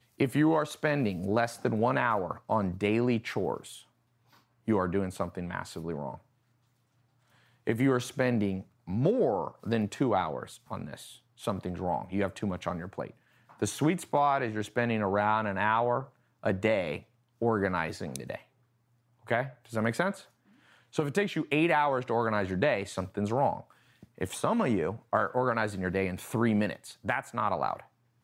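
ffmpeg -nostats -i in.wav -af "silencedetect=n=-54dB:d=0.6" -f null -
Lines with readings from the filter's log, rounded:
silence_start: 6.21
silence_end: 7.32 | silence_duration: 1.11
silence_start: 18.46
silence_end: 19.24 | silence_duration: 0.78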